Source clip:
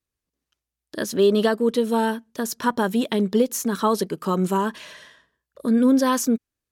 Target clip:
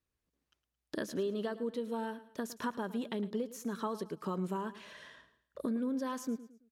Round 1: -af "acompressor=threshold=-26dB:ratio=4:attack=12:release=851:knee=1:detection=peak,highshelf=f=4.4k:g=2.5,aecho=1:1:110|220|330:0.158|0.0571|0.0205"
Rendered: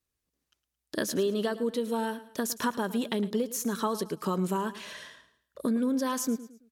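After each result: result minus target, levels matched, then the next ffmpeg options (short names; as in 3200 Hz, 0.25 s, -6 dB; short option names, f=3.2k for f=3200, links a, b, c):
8000 Hz band +7.5 dB; compressor: peak gain reduction -7 dB
-af "acompressor=threshold=-26dB:ratio=4:attack=12:release=851:knee=1:detection=peak,highshelf=f=4.4k:g=-8,aecho=1:1:110|220|330:0.158|0.0571|0.0205"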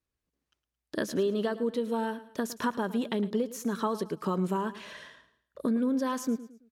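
compressor: peak gain reduction -7 dB
-af "acompressor=threshold=-35dB:ratio=4:attack=12:release=851:knee=1:detection=peak,highshelf=f=4.4k:g=-8,aecho=1:1:110|220|330:0.158|0.0571|0.0205"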